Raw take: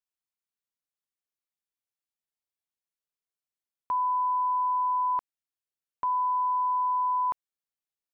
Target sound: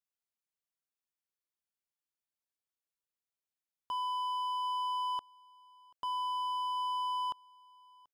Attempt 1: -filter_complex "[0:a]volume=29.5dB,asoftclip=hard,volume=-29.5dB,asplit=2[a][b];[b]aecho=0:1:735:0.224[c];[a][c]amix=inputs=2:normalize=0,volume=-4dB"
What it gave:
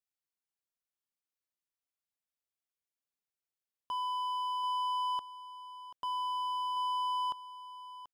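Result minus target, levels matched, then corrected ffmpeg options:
echo-to-direct +12 dB
-filter_complex "[0:a]volume=29.5dB,asoftclip=hard,volume=-29.5dB,asplit=2[a][b];[b]aecho=0:1:735:0.0562[c];[a][c]amix=inputs=2:normalize=0,volume=-4dB"

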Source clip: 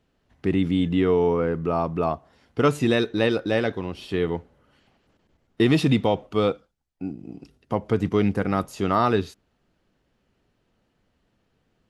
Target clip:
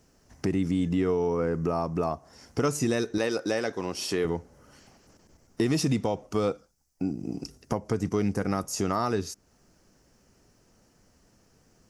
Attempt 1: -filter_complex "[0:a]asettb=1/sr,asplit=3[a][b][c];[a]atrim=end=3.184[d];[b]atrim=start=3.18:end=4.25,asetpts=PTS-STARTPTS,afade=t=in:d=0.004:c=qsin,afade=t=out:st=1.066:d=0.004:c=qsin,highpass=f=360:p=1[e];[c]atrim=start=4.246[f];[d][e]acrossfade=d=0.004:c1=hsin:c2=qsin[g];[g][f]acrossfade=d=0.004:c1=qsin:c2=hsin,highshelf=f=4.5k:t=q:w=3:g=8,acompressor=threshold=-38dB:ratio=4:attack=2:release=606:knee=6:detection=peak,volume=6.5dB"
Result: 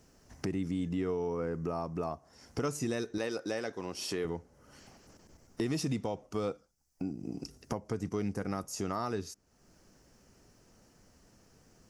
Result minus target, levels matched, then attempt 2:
compressor: peak gain reduction +7.5 dB
-filter_complex "[0:a]asettb=1/sr,asplit=3[a][b][c];[a]atrim=end=3.184[d];[b]atrim=start=3.18:end=4.25,asetpts=PTS-STARTPTS,afade=t=in:d=0.004:c=qsin,afade=t=out:st=1.066:d=0.004:c=qsin,highpass=f=360:p=1[e];[c]atrim=start=4.246[f];[d][e]acrossfade=d=0.004:c1=hsin:c2=qsin[g];[g][f]acrossfade=d=0.004:c1=qsin:c2=hsin,highshelf=f=4.5k:t=q:w=3:g=8,acompressor=threshold=-28dB:ratio=4:attack=2:release=606:knee=6:detection=peak,volume=6.5dB"

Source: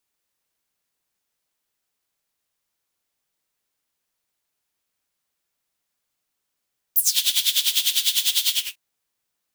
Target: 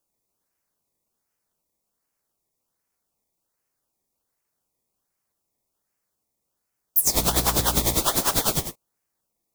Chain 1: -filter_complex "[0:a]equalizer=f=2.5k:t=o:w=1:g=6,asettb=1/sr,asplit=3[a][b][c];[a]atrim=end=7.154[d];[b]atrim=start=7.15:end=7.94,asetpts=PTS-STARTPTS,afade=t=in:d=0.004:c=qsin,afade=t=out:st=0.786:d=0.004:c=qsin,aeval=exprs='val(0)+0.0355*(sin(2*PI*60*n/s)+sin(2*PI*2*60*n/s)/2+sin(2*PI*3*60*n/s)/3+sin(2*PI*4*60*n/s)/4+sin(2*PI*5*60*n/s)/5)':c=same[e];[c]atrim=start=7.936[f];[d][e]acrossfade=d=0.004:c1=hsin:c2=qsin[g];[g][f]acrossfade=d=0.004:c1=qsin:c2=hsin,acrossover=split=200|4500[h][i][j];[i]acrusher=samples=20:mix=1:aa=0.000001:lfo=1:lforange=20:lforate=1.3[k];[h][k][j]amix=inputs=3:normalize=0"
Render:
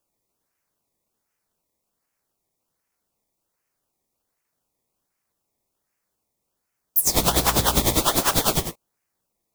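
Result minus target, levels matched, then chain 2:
2000 Hz band +2.5 dB
-filter_complex "[0:a]asettb=1/sr,asplit=3[a][b][c];[a]atrim=end=7.154[d];[b]atrim=start=7.15:end=7.94,asetpts=PTS-STARTPTS,afade=t=in:d=0.004:c=qsin,afade=t=out:st=0.786:d=0.004:c=qsin,aeval=exprs='val(0)+0.0355*(sin(2*PI*60*n/s)+sin(2*PI*2*60*n/s)/2+sin(2*PI*3*60*n/s)/3+sin(2*PI*4*60*n/s)/4+sin(2*PI*5*60*n/s)/5)':c=same[e];[c]atrim=start=7.936[f];[d][e]acrossfade=d=0.004:c1=hsin:c2=qsin[g];[g][f]acrossfade=d=0.004:c1=qsin:c2=hsin,acrossover=split=200|4500[h][i][j];[i]acrusher=samples=20:mix=1:aa=0.000001:lfo=1:lforange=20:lforate=1.3[k];[h][k][j]amix=inputs=3:normalize=0"

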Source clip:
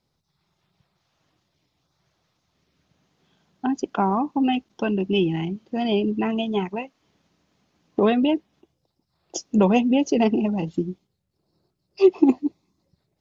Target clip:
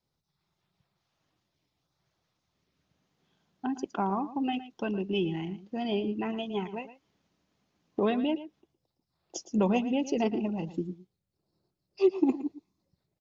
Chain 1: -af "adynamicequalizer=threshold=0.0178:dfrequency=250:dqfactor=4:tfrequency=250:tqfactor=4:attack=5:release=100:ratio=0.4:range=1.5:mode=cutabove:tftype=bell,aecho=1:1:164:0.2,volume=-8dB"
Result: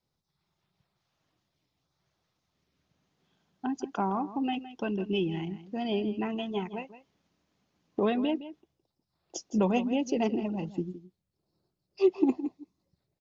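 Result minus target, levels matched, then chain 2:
echo 50 ms late
-af "adynamicequalizer=threshold=0.0178:dfrequency=250:dqfactor=4:tfrequency=250:tqfactor=4:attack=5:release=100:ratio=0.4:range=1.5:mode=cutabove:tftype=bell,aecho=1:1:114:0.2,volume=-8dB"

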